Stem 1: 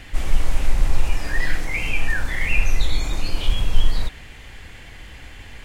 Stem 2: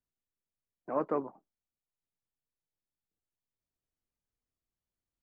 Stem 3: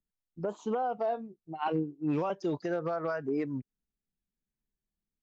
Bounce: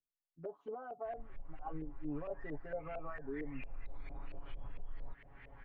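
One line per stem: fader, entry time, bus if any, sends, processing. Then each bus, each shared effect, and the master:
3.19 s -24 dB -> 3.92 s -16.5 dB, 1.05 s, bus A, no send, bell 5900 Hz -8.5 dB 1.1 oct; compressor 2:1, threshold -30 dBFS, peak gain reduction 13 dB
off
-16.5 dB, 0.00 s, no bus, no send, notch 940 Hz, Q 6.8
bus A: 0.0 dB, limiter -38.5 dBFS, peak gain reduction 7 dB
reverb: off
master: comb 7.2 ms, depth 80%; LFO low-pass saw up 4.4 Hz 520–2300 Hz

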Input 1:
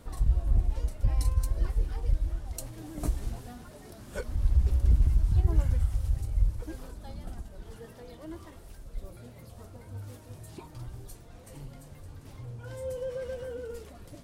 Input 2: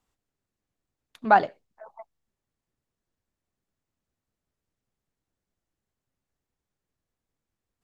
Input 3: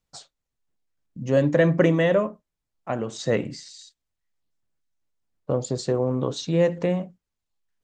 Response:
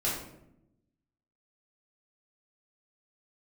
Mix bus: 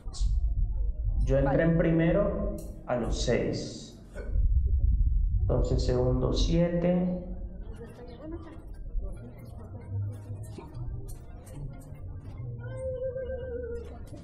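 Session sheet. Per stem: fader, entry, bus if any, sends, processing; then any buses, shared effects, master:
-1.0 dB, 0.00 s, send -17.5 dB, spectral gate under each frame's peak -30 dB strong; low shelf 260 Hz +5.5 dB; auto duck -21 dB, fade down 0.35 s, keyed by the third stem
-11.0 dB, 0.15 s, no send, dry
-4.5 dB, 0.00 s, send -7.5 dB, treble ducked by the level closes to 2600 Hz, closed at -19.5 dBFS; three-band expander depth 40%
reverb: on, RT60 0.80 s, pre-delay 5 ms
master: compressor 6:1, threshold -21 dBFS, peak gain reduction 10 dB

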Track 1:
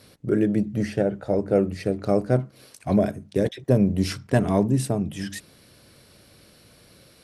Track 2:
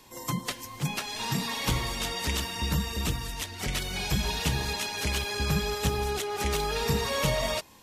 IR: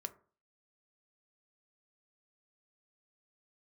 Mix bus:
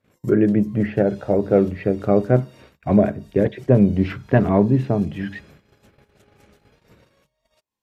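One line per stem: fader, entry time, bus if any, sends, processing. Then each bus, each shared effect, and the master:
+2.0 dB, 0.00 s, send -7 dB, LPF 2600 Hz 24 dB/oct
-10.5 dB, 0.00 s, send -8 dB, compressor 12:1, threshold -35 dBFS, peak gain reduction 14 dB; auto duck -12 dB, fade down 0.45 s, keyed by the first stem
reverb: on, RT60 0.40 s, pre-delay 3 ms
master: gate -47 dBFS, range -24 dB

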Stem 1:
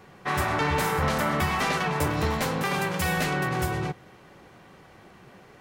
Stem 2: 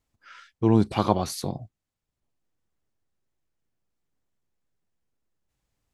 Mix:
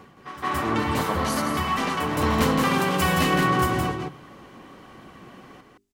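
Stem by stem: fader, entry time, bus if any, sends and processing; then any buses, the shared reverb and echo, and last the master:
+1.5 dB, 0.00 s, no send, echo send -4.5 dB, small resonant body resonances 260/1100/3000 Hz, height 9 dB, ringing for 30 ms; phaser 1.2 Hz, delay 3.9 ms, feedback 22%; auto duck -21 dB, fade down 0.40 s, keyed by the second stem
-8.0 dB, 0.00 s, no send, echo send -7 dB, high shelf 2900 Hz +10 dB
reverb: off
echo: echo 0.168 s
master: notches 50/100/150/200/250/300/350/400 Hz

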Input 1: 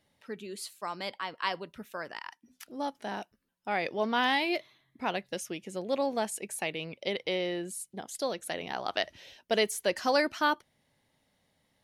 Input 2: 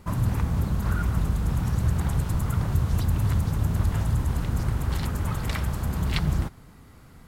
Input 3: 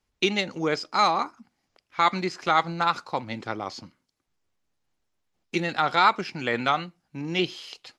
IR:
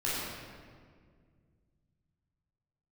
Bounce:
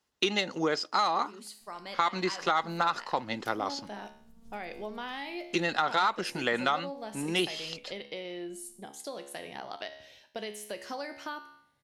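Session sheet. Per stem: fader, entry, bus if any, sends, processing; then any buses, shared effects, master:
-8.0 dB, 0.85 s, bus A, no send, resonator 70 Hz, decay 0.56 s, harmonics all, mix 70%; AGC gain up to 11 dB
-16.0 dB, 1.55 s, bus A, no send, bell 1600 Hz -14 dB 1.5 oct; compressor, threshold -25 dBFS, peak gain reduction 8 dB; robotiser 228 Hz; auto duck -18 dB, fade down 0.55 s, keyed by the third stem
+2.0 dB, 0.00 s, no bus, no send, HPF 300 Hz 6 dB/oct; notch 2300 Hz, Q 7.7; soft clip -9.5 dBFS, distortion -23 dB
bus A: 0.0 dB, compressor 4:1, threshold -36 dBFS, peak gain reduction 10.5 dB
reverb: off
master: compressor 6:1, threshold -23 dBFS, peak gain reduction 9 dB

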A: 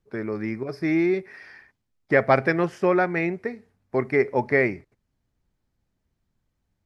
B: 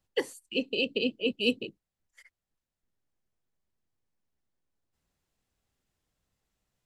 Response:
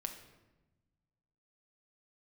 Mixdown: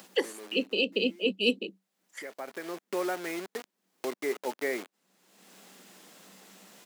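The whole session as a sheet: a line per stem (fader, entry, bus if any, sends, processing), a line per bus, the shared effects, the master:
-10.5 dB, 0.10 s, no send, high shelf 3400 Hz -6.5 dB; bit-crush 5-bit; auto duck -22 dB, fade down 1.05 s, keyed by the second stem
+1.5 dB, 0.00 s, no send, bell 190 Hz +15 dB 0.21 oct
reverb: off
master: HPF 250 Hz 24 dB/oct; upward compressor, threshold -31 dBFS

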